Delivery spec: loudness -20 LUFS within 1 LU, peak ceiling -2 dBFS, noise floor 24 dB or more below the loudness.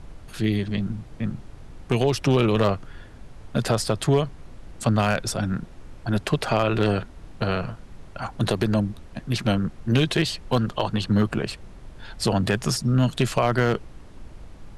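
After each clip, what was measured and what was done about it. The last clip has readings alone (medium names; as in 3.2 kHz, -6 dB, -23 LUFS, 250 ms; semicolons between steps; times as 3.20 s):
clipped samples 0.3%; clipping level -11.5 dBFS; noise floor -44 dBFS; noise floor target -48 dBFS; loudness -24.0 LUFS; peak level -11.5 dBFS; loudness target -20.0 LUFS
-> clip repair -11.5 dBFS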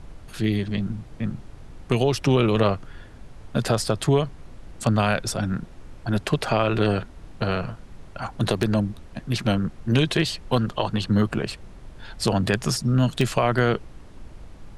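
clipped samples 0.0%; noise floor -44 dBFS; noise floor target -48 dBFS
-> noise print and reduce 6 dB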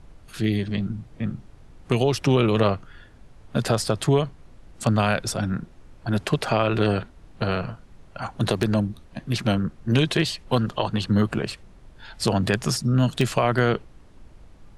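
noise floor -50 dBFS; loudness -24.0 LUFS; peak level -4.5 dBFS; loudness target -20.0 LUFS
-> trim +4 dB; peak limiter -2 dBFS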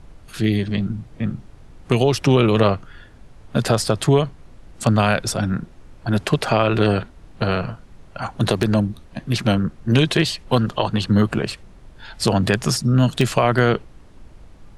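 loudness -20.0 LUFS; peak level -2.0 dBFS; noise floor -46 dBFS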